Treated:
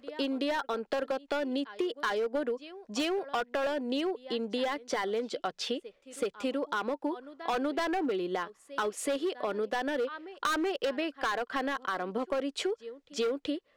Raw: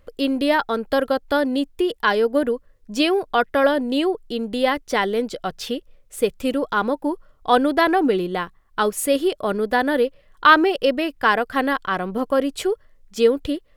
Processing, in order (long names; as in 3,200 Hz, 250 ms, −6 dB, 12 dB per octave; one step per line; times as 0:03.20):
high-pass filter 48 Hz 6 dB per octave
three-way crossover with the lows and the highs turned down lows −20 dB, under 220 Hz, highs −22 dB, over 7,800 Hz
backwards echo 379 ms −24 dB
gain into a clipping stage and back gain 16 dB
downward compressor, threshold −26 dBFS, peak gain reduction 8.5 dB
level −2.5 dB